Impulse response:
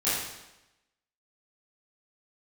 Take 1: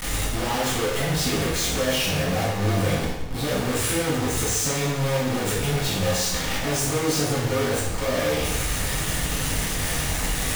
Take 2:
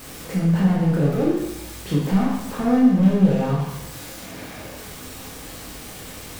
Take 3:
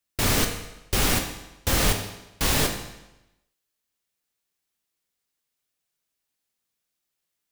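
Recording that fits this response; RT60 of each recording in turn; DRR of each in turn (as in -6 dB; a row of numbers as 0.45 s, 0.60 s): 1; 0.95 s, 0.95 s, 0.95 s; -12.5 dB, -4.5 dB, 3.5 dB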